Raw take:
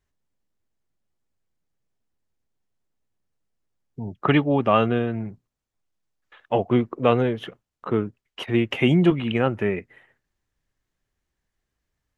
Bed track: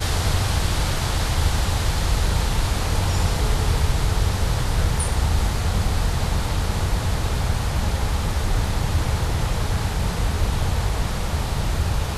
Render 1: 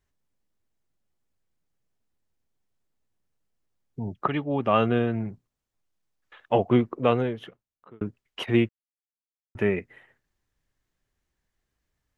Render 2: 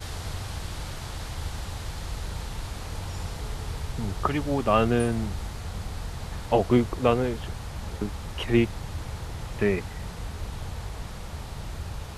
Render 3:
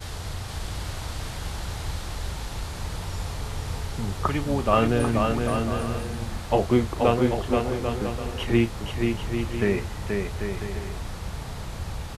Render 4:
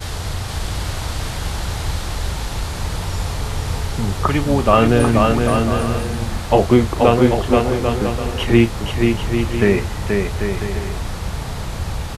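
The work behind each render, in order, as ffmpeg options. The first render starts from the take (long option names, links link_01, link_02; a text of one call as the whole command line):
ffmpeg -i in.wav -filter_complex "[0:a]asplit=5[link_01][link_02][link_03][link_04][link_05];[link_01]atrim=end=4.28,asetpts=PTS-STARTPTS,afade=type=out:start_time=4.276:duration=0.004:curve=hsin:silence=0.237137[link_06];[link_02]atrim=start=4.28:end=8.01,asetpts=PTS-STARTPTS,afade=type=in:duration=0.75:silence=0.237137,afade=type=out:start_time=2.42:duration=1.31[link_07];[link_03]atrim=start=8.01:end=8.69,asetpts=PTS-STARTPTS,afade=type=in:duration=0.004:curve=hsin,afade=type=out:start_time=0.676:duration=0.004:curve=hsin[link_08];[link_04]atrim=start=8.69:end=9.55,asetpts=PTS-STARTPTS,volume=0[link_09];[link_05]atrim=start=9.55,asetpts=PTS-STARTPTS,afade=type=in:duration=0.004:curve=hsin[link_10];[link_06][link_07][link_08][link_09][link_10]concat=n=5:v=0:a=1" out.wav
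ffmpeg -i in.wav -i bed.wav -filter_complex "[1:a]volume=-13dB[link_01];[0:a][link_01]amix=inputs=2:normalize=0" out.wav
ffmpeg -i in.wav -filter_complex "[0:a]asplit=2[link_01][link_02];[link_02]adelay=35,volume=-12dB[link_03];[link_01][link_03]amix=inputs=2:normalize=0,aecho=1:1:480|792|994.8|1127|1212:0.631|0.398|0.251|0.158|0.1" out.wav
ffmpeg -i in.wav -af "volume=8.5dB,alimiter=limit=-1dB:level=0:latency=1" out.wav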